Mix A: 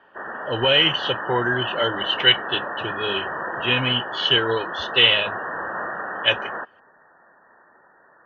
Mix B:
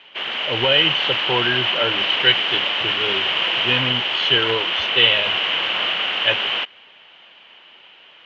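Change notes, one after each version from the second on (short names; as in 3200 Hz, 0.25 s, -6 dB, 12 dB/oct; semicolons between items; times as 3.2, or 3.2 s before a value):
background: remove brick-wall FIR low-pass 1900 Hz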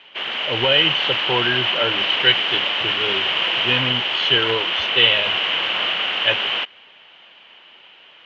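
none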